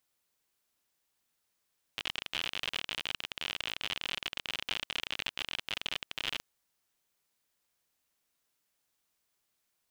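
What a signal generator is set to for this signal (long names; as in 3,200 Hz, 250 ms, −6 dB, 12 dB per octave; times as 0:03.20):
Geiger counter clicks 54 per second −18 dBFS 4.44 s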